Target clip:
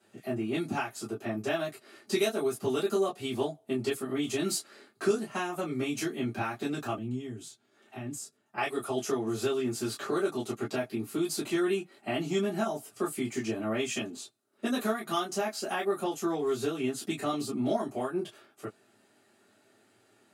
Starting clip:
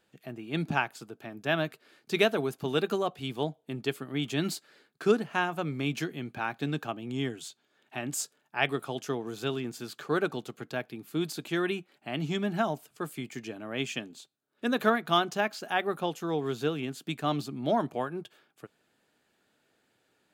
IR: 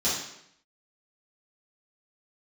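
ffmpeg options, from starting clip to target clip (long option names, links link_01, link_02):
-filter_complex "[0:a]acrossover=split=4900[link_01][link_02];[link_01]acompressor=threshold=-35dB:ratio=6[link_03];[link_03][link_02]amix=inputs=2:normalize=0[link_04];[1:a]atrim=start_sample=2205,atrim=end_sample=3087,asetrate=70560,aresample=44100[link_05];[link_04][link_05]afir=irnorm=-1:irlink=0,asettb=1/sr,asplit=3[link_06][link_07][link_08];[link_06]atrim=end=6.984[link_09];[link_07]atrim=start=6.98:end=8.58,asetpts=PTS-STARTPTS,afade=type=in:duration=0.004:curve=qsin,afade=type=out:start_time=1.596:duration=0.004:curve=qsin,acrossover=split=230[link_10][link_11];[link_11]acompressor=threshold=-53dB:ratio=2[link_12];[link_10][link_12]amix=inputs=2:normalize=0[link_13];[link_08]atrim=start=8.576[link_14];[link_09][link_13]acrossfade=duration=0.004:curve1=hsin:curve2=qsin[link_15];[link_15][link_14]acrossfade=duration=0.004:curve1=qsin:curve2=hsin"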